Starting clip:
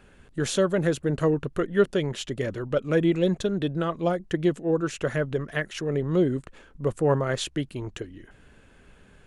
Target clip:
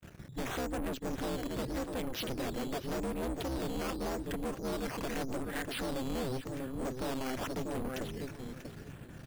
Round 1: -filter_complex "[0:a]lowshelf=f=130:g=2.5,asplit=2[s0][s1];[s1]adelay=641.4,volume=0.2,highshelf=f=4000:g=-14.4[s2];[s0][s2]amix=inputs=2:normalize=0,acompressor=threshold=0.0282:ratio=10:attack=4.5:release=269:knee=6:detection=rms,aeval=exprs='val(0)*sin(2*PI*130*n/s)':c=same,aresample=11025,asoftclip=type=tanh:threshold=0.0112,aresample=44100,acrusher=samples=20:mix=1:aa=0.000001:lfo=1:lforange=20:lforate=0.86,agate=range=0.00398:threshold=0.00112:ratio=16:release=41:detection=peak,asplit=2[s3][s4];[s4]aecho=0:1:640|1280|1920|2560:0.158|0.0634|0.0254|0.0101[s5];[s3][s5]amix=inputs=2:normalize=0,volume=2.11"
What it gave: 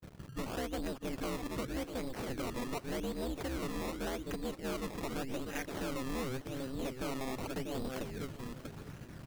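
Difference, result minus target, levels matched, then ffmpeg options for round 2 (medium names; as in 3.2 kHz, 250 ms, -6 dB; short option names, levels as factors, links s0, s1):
compression: peak gain reduction +6.5 dB; decimation with a swept rate: distortion +5 dB
-filter_complex "[0:a]lowshelf=f=130:g=2.5,asplit=2[s0][s1];[s1]adelay=641.4,volume=0.2,highshelf=f=4000:g=-14.4[s2];[s0][s2]amix=inputs=2:normalize=0,acompressor=threshold=0.0631:ratio=10:attack=4.5:release=269:knee=6:detection=rms,aeval=exprs='val(0)*sin(2*PI*130*n/s)':c=same,aresample=11025,asoftclip=type=tanh:threshold=0.0112,aresample=44100,acrusher=samples=8:mix=1:aa=0.000001:lfo=1:lforange=8:lforate=0.86,agate=range=0.00398:threshold=0.00112:ratio=16:release=41:detection=peak,asplit=2[s3][s4];[s4]aecho=0:1:640|1280|1920|2560:0.158|0.0634|0.0254|0.0101[s5];[s3][s5]amix=inputs=2:normalize=0,volume=2.11"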